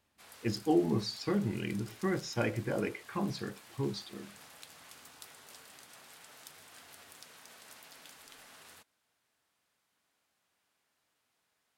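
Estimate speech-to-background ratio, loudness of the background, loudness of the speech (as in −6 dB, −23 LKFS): 18.0 dB, −52.5 LKFS, −34.5 LKFS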